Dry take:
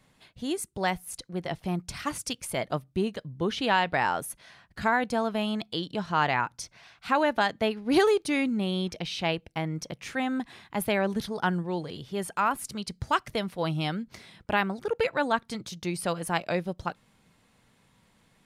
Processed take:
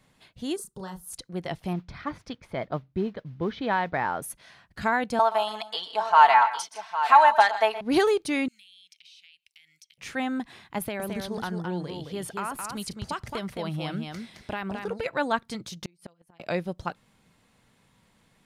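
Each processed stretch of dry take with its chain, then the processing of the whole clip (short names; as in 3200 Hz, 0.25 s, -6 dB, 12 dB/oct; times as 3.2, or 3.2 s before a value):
0.56–1.13 fixed phaser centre 450 Hz, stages 8 + compressor 5:1, threshold -36 dBFS + doubler 32 ms -5 dB
1.73–4.22 notch 2800 Hz, Q 5 + modulation noise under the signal 20 dB + air absorption 300 m
5.19–7.81 resonant high-pass 840 Hz, resonance Q 3.1 + comb 4.5 ms, depth 77% + tapped delay 0.122/0.156/0.808 s -15/-17/-11 dB
8.48–9.98 inverse Chebyshev high-pass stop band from 1200 Hz + compressor 8:1, threshold -50 dBFS
10.78–15.06 compressor, threshold -27 dBFS + echo 0.217 s -5 dB
15.82–16.4 comb 5.7 ms, depth 75% + flipped gate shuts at -19 dBFS, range -37 dB
whole clip: dry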